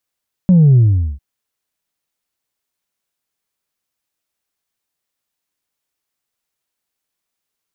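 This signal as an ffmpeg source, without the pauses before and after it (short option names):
-f lavfi -i "aevalsrc='0.501*clip((0.7-t)/0.43,0,1)*tanh(1.12*sin(2*PI*190*0.7/log(65/190)*(exp(log(65/190)*t/0.7)-1)))/tanh(1.12)':d=0.7:s=44100"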